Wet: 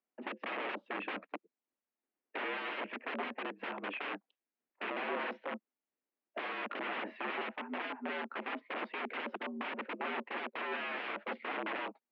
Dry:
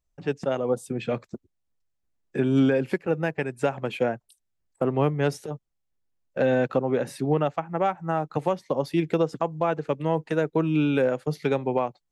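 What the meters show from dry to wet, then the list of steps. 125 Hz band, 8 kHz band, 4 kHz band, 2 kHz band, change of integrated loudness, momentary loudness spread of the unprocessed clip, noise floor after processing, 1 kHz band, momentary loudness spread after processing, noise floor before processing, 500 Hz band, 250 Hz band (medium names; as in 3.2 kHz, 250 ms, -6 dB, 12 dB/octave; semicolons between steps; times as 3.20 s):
under -30 dB, under -30 dB, -3.5 dB, -3.0 dB, -13.5 dB, 8 LU, under -85 dBFS, -9.0 dB, 6 LU, -77 dBFS, -18.5 dB, -19.0 dB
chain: integer overflow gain 28 dB; mistuned SSB +78 Hz 160–2700 Hz; trim -2.5 dB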